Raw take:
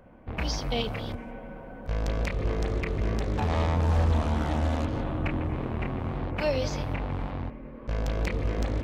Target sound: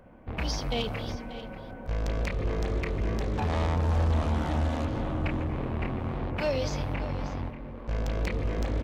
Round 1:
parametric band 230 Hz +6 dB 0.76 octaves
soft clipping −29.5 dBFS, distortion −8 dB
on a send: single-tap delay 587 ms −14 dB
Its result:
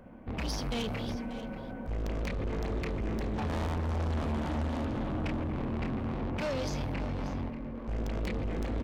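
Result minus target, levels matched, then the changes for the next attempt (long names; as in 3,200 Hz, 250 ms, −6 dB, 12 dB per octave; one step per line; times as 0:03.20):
soft clipping: distortion +12 dB; 250 Hz band +3.5 dB
change: soft clipping −19 dBFS, distortion −20 dB
remove: parametric band 230 Hz +6 dB 0.76 octaves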